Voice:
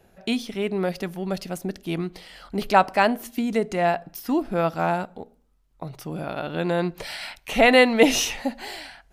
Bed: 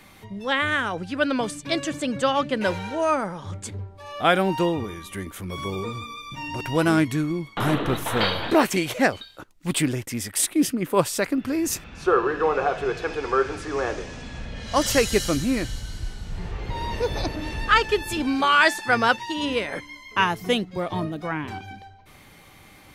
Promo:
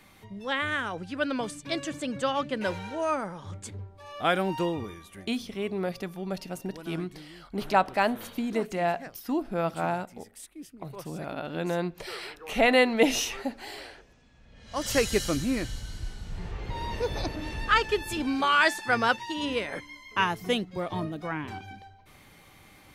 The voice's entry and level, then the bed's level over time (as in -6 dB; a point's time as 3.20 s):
5.00 s, -5.5 dB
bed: 4.87 s -6 dB
5.55 s -23.5 dB
14.39 s -23.5 dB
14.97 s -4.5 dB